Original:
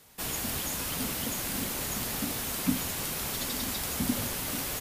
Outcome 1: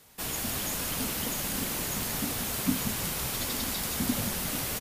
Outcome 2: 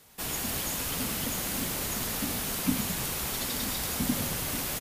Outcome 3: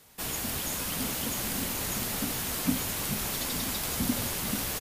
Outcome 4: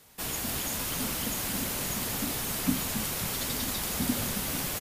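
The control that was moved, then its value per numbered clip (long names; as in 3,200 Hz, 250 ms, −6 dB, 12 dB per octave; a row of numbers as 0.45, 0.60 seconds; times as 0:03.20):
echo with shifted repeats, delay time: 177, 108, 433, 271 milliseconds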